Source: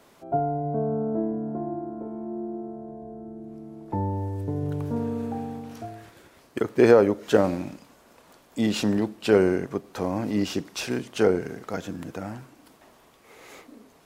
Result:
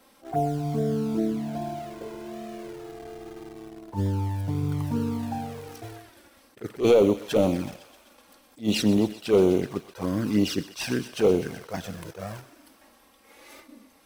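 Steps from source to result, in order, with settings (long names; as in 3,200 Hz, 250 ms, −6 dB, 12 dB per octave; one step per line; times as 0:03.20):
high-shelf EQ 4,200 Hz +6 dB
notch filter 6,900 Hz, Q 6.1
in parallel at −7 dB: bit-depth reduction 6 bits, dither none
on the sum: hard clipping −12.5 dBFS, distortion −10 dB
flanger swept by the level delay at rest 3.9 ms, full sweep at −16.5 dBFS
on a send: feedback echo with a high-pass in the loop 127 ms, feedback 75%, high-pass 670 Hz, level −16 dB
on the sum: level that may rise only so fast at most 270 dB per second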